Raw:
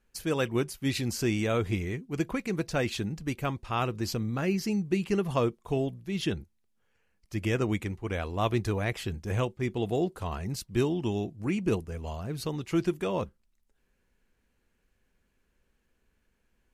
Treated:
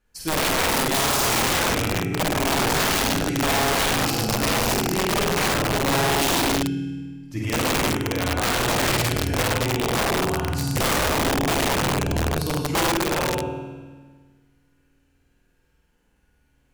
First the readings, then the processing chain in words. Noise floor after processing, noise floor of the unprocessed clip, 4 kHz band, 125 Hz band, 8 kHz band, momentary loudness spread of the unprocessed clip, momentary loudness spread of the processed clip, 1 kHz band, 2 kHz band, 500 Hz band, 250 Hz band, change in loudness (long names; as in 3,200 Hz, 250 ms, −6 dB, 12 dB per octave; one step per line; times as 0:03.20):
−65 dBFS, −74 dBFS, +16.0 dB, +5.0 dB, +18.5 dB, 6 LU, 5 LU, +13.5 dB, +14.0 dB, +6.0 dB, +5.0 dB, +9.0 dB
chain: flutter between parallel walls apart 8.7 metres, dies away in 1.4 s
feedback delay network reverb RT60 1.4 s, low-frequency decay 1.4×, high-frequency decay 0.75×, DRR −1 dB
wrap-around overflow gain 16.5 dB